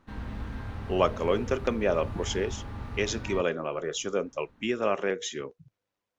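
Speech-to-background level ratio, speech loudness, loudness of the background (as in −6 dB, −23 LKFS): 9.0 dB, −30.0 LKFS, −39.0 LKFS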